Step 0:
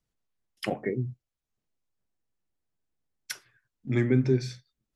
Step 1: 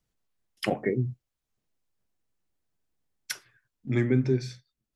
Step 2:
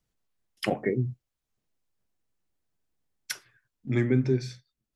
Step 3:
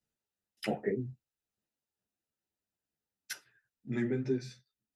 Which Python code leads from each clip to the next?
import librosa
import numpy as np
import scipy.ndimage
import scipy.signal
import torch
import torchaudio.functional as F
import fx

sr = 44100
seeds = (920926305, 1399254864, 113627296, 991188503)

y1 = fx.rider(x, sr, range_db=10, speed_s=2.0)
y2 = y1
y3 = fx.notch_comb(y2, sr, f0_hz=1100.0)
y3 = fx.ensemble(y3, sr)
y3 = y3 * librosa.db_to_amplitude(-2.5)